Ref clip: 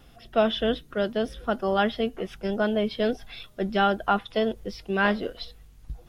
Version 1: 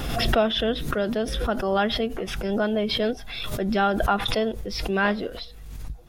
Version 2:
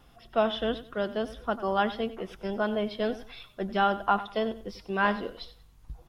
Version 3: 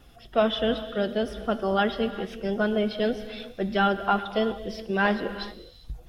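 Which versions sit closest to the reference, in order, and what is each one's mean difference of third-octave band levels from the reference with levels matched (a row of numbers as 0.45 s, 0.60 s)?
2, 3, 1; 2.5 dB, 3.5 dB, 6.5 dB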